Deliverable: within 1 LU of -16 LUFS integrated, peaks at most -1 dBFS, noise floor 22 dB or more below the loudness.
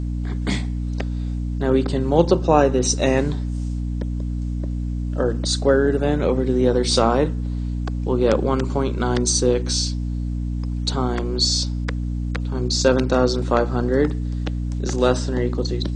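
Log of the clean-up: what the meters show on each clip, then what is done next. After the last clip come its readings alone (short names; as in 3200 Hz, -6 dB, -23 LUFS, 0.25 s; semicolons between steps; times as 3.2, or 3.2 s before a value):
hum 60 Hz; harmonics up to 300 Hz; hum level -22 dBFS; loudness -21.5 LUFS; peak -2.0 dBFS; loudness target -16.0 LUFS
-> de-hum 60 Hz, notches 5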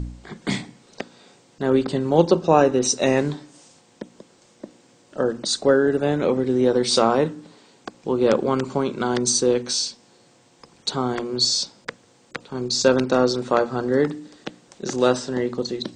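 hum none; loudness -21.0 LUFS; peak -3.0 dBFS; loudness target -16.0 LUFS
-> gain +5 dB; limiter -1 dBFS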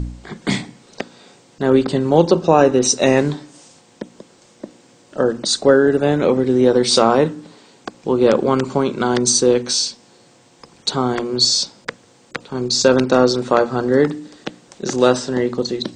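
loudness -16.5 LUFS; peak -1.0 dBFS; noise floor -51 dBFS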